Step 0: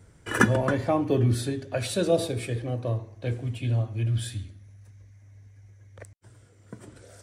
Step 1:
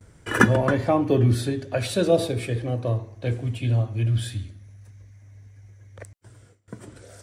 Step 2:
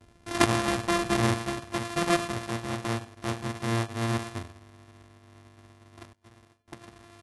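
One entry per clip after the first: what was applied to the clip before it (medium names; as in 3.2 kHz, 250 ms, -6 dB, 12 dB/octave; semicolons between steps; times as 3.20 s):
gate with hold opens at -47 dBFS; dynamic bell 8.3 kHz, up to -4 dB, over -48 dBFS, Q 0.79; trim +3.5 dB
sorted samples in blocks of 128 samples; delay 97 ms -22.5 dB; trim -6.5 dB; AAC 32 kbps 44.1 kHz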